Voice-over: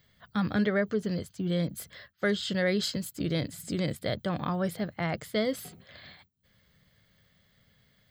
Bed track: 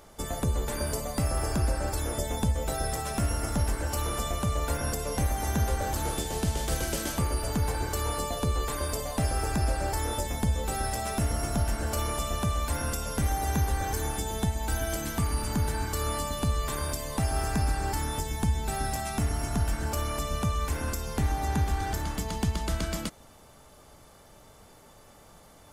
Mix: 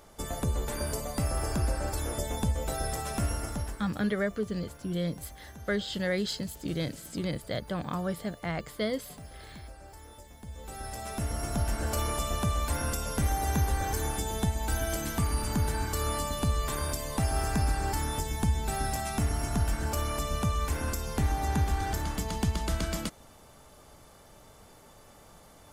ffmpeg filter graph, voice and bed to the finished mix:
-filter_complex "[0:a]adelay=3450,volume=0.75[s0];[1:a]volume=7.08,afade=t=out:st=3.27:d=0.66:silence=0.133352,afade=t=in:st=10.42:d=1.46:silence=0.112202[s1];[s0][s1]amix=inputs=2:normalize=0"

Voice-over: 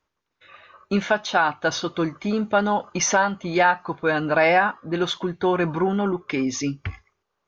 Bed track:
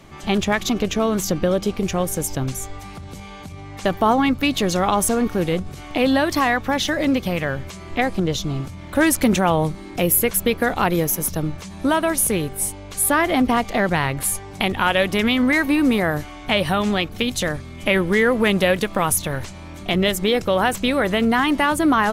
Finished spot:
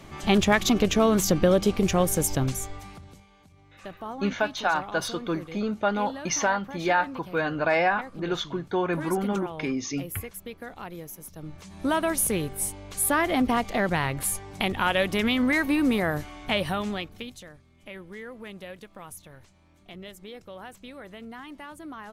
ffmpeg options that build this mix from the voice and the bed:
-filter_complex "[0:a]adelay=3300,volume=0.562[s0];[1:a]volume=5.01,afade=t=out:st=2.33:d=0.93:silence=0.105925,afade=t=in:st=11.35:d=0.62:silence=0.188365,afade=t=out:st=16.43:d=1:silence=0.125893[s1];[s0][s1]amix=inputs=2:normalize=0"

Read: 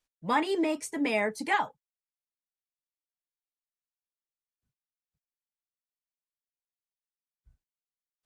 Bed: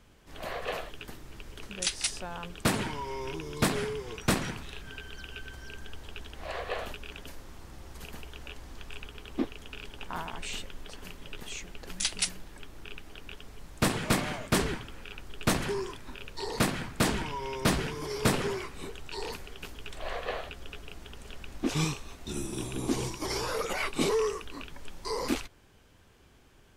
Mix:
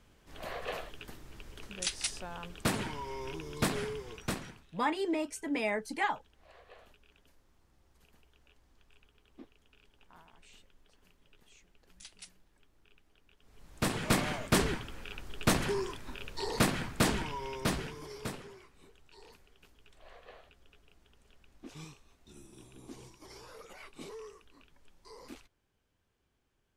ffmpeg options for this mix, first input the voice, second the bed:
-filter_complex "[0:a]adelay=4500,volume=0.596[s0];[1:a]volume=7.08,afade=t=out:st=3.93:d=0.74:silence=0.133352,afade=t=in:st=13.39:d=0.82:silence=0.0891251,afade=t=out:st=16.9:d=1.56:silence=0.11885[s1];[s0][s1]amix=inputs=2:normalize=0"

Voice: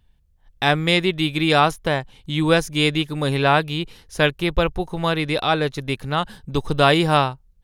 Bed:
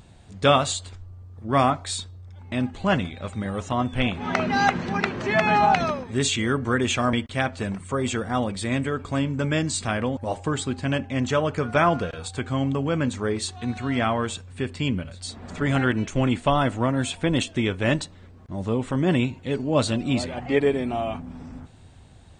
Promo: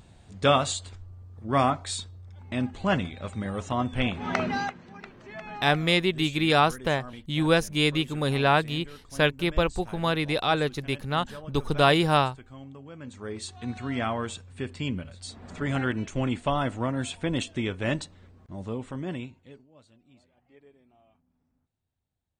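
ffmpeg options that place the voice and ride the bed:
-filter_complex "[0:a]adelay=5000,volume=0.596[s0];[1:a]volume=3.76,afade=t=out:st=4.45:d=0.29:silence=0.141254,afade=t=in:st=12.98:d=0.69:silence=0.188365,afade=t=out:st=18.31:d=1.37:silence=0.0316228[s1];[s0][s1]amix=inputs=2:normalize=0"

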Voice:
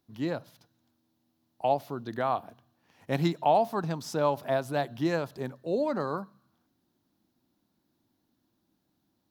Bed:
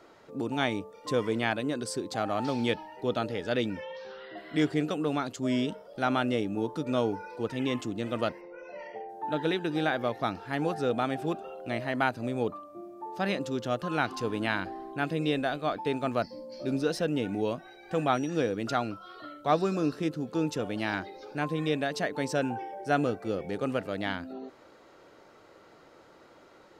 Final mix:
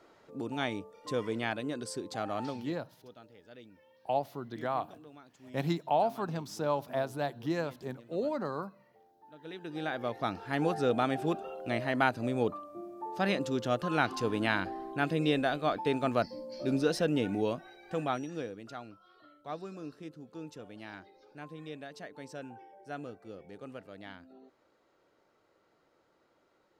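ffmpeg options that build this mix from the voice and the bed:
-filter_complex "[0:a]adelay=2450,volume=0.596[s0];[1:a]volume=8.41,afade=t=out:st=2.44:d=0.24:silence=0.11885,afade=t=in:st=9.38:d=1.25:silence=0.0668344,afade=t=out:st=17.24:d=1.4:silence=0.177828[s1];[s0][s1]amix=inputs=2:normalize=0"

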